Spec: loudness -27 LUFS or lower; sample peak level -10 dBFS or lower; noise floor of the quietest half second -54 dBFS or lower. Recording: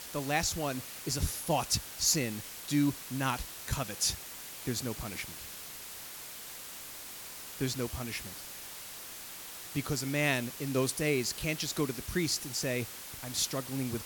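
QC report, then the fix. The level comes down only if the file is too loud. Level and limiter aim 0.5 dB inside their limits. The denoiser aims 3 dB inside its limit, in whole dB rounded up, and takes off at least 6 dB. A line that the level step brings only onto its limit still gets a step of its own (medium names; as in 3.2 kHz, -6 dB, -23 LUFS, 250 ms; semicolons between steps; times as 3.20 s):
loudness -33.5 LUFS: pass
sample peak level -14.0 dBFS: pass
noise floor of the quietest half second -45 dBFS: fail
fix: noise reduction 12 dB, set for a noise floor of -45 dBFS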